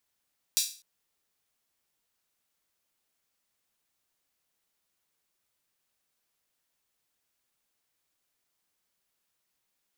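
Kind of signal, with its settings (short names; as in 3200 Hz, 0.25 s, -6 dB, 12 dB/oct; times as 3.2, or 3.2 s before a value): open hi-hat length 0.25 s, high-pass 4400 Hz, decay 0.38 s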